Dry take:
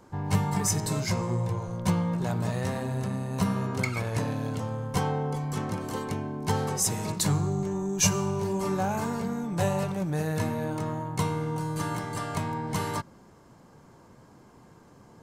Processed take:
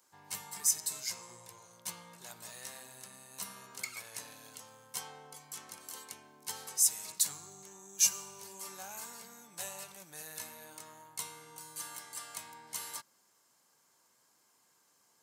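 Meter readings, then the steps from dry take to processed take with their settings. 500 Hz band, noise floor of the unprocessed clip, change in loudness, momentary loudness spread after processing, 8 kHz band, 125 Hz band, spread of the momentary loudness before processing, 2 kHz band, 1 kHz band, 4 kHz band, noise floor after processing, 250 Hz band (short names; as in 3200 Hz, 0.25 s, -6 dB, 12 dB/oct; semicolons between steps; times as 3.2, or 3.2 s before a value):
-23.0 dB, -55 dBFS, -7.0 dB, 22 LU, -0.5 dB, -34.0 dB, 6 LU, -11.0 dB, -17.5 dB, -4.5 dB, -71 dBFS, -30.0 dB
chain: differentiator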